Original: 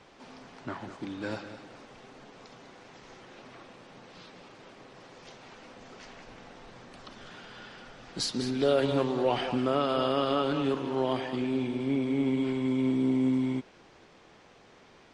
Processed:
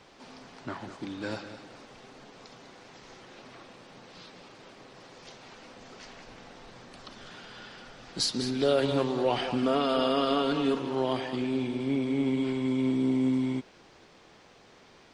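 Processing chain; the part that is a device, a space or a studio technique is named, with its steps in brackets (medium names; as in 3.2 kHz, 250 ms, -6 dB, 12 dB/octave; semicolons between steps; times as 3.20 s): 9.62–10.79 s: comb 4.3 ms, depth 59%; presence and air boost (peaking EQ 4.5 kHz +3 dB 0.77 oct; treble shelf 9.2 kHz +6 dB)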